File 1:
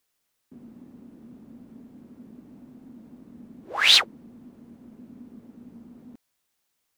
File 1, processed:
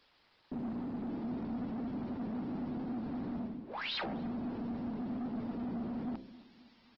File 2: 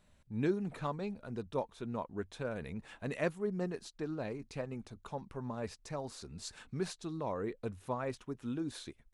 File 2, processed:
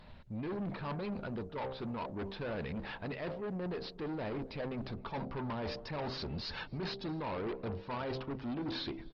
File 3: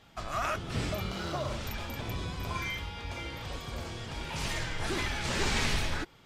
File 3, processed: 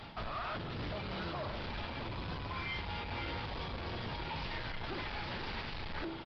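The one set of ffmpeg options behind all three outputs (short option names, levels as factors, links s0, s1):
-filter_complex "[0:a]equalizer=f=900:w=6.2:g=6,bandreject=f=65.52:t=h:w=4,bandreject=f=131.04:t=h:w=4,bandreject=f=196.56:t=h:w=4,bandreject=f=262.08:t=h:w=4,bandreject=f=327.6:t=h:w=4,bandreject=f=393.12:t=h:w=4,bandreject=f=458.64:t=h:w=4,bandreject=f=524.16:t=h:w=4,bandreject=f=589.68:t=h:w=4,bandreject=f=655.2:t=h:w=4,bandreject=f=720.72:t=h:w=4,bandreject=f=786.24:t=h:w=4,areverse,acompressor=threshold=0.00794:ratio=20,areverse,aeval=exprs='(tanh(316*val(0)+0.15)-tanh(0.15))/316':c=same,asplit=2[s0][s1];[s1]adelay=266,lowpass=f=1000:p=1,volume=0.126,asplit=2[s2][s3];[s3]adelay=266,lowpass=f=1000:p=1,volume=0.53,asplit=2[s4][s5];[s5]adelay=266,lowpass=f=1000:p=1,volume=0.53,asplit=2[s6][s7];[s7]adelay=266,lowpass=f=1000:p=1,volume=0.53[s8];[s0][s2][s4][s6][s8]amix=inputs=5:normalize=0,aresample=11025,aresample=44100,volume=5.62" -ar 48000 -c:a libopus -b:a 16k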